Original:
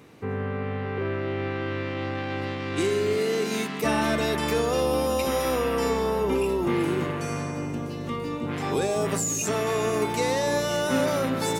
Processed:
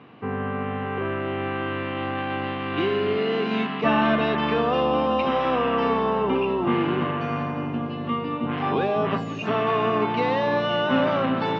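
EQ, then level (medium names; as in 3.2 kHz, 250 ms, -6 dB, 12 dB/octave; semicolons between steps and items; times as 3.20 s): distance through air 160 m; cabinet simulation 100–4100 Hz, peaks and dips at 130 Hz +4 dB, 230 Hz +7 dB, 730 Hz +7 dB, 1.1 kHz +9 dB, 1.6 kHz +4 dB, 2.9 kHz +9 dB; 0.0 dB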